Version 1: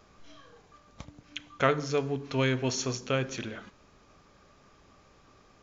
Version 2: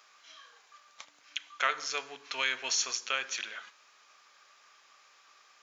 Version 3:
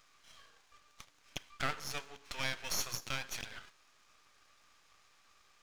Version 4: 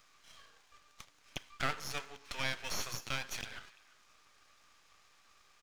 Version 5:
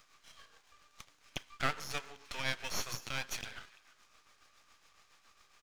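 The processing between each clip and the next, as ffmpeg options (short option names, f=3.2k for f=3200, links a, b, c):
-filter_complex "[0:a]highpass=1.4k,asplit=2[a][b];[b]alimiter=limit=-24dB:level=0:latency=1:release=133,volume=-2dB[c];[a][c]amix=inputs=2:normalize=0"
-af "aeval=exprs='max(val(0),0)':c=same,volume=-2dB"
-filter_complex "[0:a]acrossover=split=780|4300[a][b][c];[b]aecho=1:1:342:0.112[d];[c]alimiter=level_in=12dB:limit=-24dB:level=0:latency=1:release=20,volume=-12dB[e];[a][d][e]amix=inputs=3:normalize=0,volume=1dB"
-af "tremolo=f=7.2:d=0.52,volume=2.5dB"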